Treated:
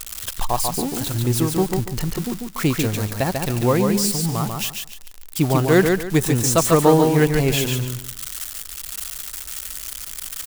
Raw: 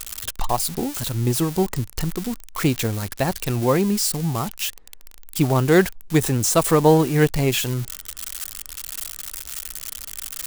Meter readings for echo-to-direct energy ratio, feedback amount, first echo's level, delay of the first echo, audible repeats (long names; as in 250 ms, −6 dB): −4.0 dB, 26%, −4.5 dB, 143 ms, 3